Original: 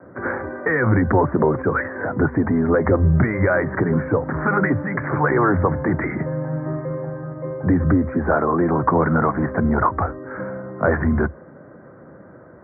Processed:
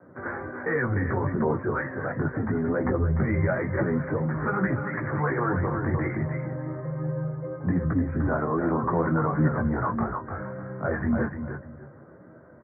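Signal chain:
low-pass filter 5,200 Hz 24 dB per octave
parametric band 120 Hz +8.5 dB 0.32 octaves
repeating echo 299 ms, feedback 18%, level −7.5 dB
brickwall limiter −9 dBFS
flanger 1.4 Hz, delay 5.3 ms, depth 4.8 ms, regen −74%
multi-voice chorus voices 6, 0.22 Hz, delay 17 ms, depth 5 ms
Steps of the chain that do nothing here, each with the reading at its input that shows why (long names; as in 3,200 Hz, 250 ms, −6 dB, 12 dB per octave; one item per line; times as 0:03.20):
low-pass filter 5,200 Hz: nothing at its input above 2,200 Hz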